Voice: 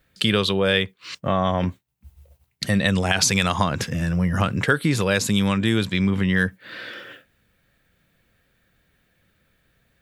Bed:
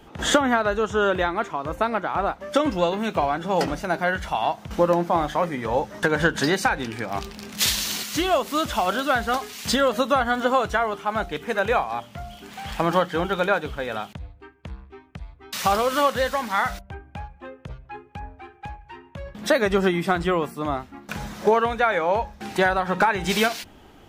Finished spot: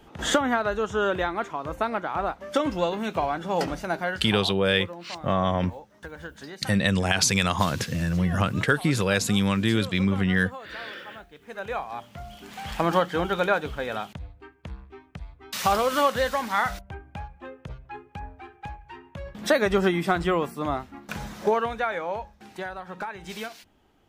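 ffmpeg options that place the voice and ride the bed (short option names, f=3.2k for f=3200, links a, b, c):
-filter_complex "[0:a]adelay=4000,volume=-2.5dB[a];[1:a]volume=14.5dB,afade=t=out:st=3.93:d=0.62:silence=0.158489,afade=t=in:st=11.37:d=1.17:silence=0.125893,afade=t=out:st=20.98:d=1.55:silence=0.223872[b];[a][b]amix=inputs=2:normalize=0"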